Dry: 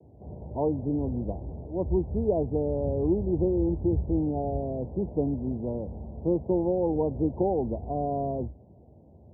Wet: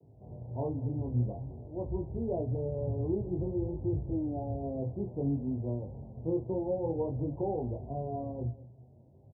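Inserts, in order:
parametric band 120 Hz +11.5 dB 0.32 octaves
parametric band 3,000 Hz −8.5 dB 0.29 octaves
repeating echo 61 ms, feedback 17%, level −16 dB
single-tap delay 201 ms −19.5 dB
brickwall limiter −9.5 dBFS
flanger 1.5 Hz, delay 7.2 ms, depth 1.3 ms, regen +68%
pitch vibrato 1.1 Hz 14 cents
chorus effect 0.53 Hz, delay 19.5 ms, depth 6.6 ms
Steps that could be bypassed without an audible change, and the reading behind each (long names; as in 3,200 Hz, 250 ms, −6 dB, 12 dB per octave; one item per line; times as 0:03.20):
parametric band 3,000 Hz: nothing at its input above 910 Hz
brickwall limiter −9.5 dBFS: peak of its input −12.5 dBFS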